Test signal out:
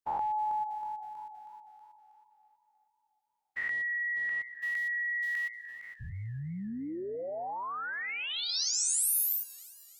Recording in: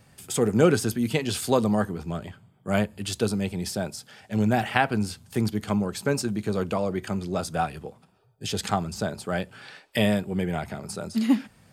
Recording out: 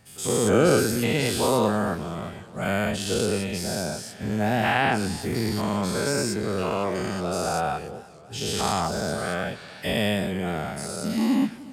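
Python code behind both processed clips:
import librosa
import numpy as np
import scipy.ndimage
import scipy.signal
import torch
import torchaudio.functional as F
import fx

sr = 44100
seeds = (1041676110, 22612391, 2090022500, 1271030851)

y = fx.spec_dilate(x, sr, span_ms=240)
y = fx.echo_warbled(y, sr, ms=304, feedback_pct=56, rate_hz=2.8, cents=111, wet_db=-20.0)
y = y * 10.0 ** (-5.5 / 20.0)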